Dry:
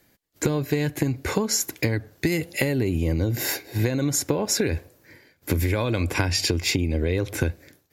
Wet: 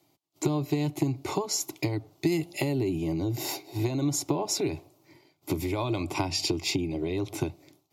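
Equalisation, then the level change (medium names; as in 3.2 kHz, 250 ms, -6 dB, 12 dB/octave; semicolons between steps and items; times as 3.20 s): high-pass 190 Hz 6 dB/octave; low-pass 3.6 kHz 6 dB/octave; static phaser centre 330 Hz, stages 8; +1.0 dB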